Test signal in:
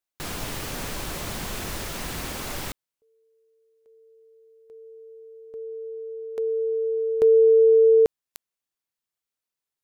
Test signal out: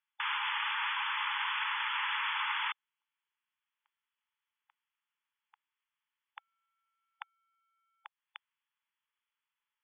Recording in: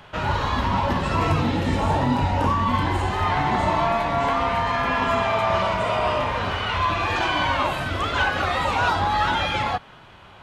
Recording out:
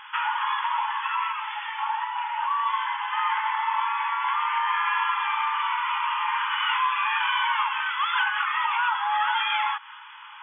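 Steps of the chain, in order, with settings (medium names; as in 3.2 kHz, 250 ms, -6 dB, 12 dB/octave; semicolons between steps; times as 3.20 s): compression, threshold -25 dBFS; brick-wall FIR band-pass 820–3500 Hz; trim +5.5 dB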